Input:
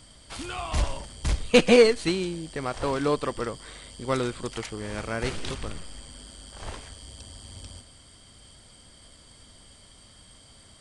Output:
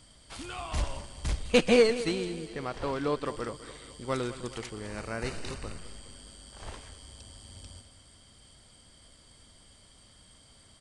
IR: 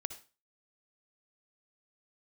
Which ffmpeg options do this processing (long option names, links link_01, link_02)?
-filter_complex "[0:a]asettb=1/sr,asplit=3[link_01][link_02][link_03];[link_01]atrim=end=2.484[link_04];[link_02]atrim=start=2.48:end=3.26,asetpts=PTS-STARTPTS,afade=type=in:duration=0.004:curve=qsin,afade=type=out:start_time=0.776:duration=0.004:curve=qsin,acrossover=split=5400[link_05][link_06];[link_06]acompressor=threshold=-53dB:ratio=4:attack=1:release=60[link_07];[link_05][link_07]amix=inputs=2:normalize=0[link_08];[link_03]atrim=start=3.256[link_09];[link_04][link_08]acrossfade=duration=0.004:curve1=hsin:curve2=qsin[link_10];[link_10][link_09]acrossfade=duration=0.004:curve1=qsin:curve2=hsin,asettb=1/sr,asplit=3[link_11][link_12][link_13];[link_11]atrim=end=4.874[link_14];[link_12]atrim=start=4.87:end=5.79,asetpts=PTS-STARTPTS,afade=type=in:duration=0.004:curve=qsin,afade=type=out:start_time=0.916:duration=0.004:curve=qsin,asuperstop=centerf=3300:order=4:qfactor=6.5[link_15];[link_13]atrim=start=5.786[link_16];[link_14][link_15]acrossfade=duration=0.004:curve1=hsin:curve2=qsin[link_17];[link_17][link_16]acrossfade=duration=0.004:curve1=qsin:curve2=hsin,aecho=1:1:206|412|618|824|1030:0.178|0.0978|0.0538|0.0296|0.0163,volume=-5dB"